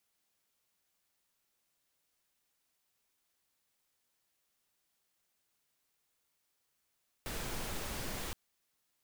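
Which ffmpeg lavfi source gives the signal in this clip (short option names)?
-f lavfi -i "anoisesrc=c=pink:a=0.0543:d=1.07:r=44100:seed=1"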